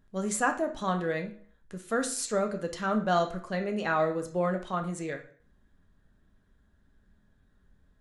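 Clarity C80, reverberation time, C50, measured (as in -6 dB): 16.0 dB, 0.45 s, 10.5 dB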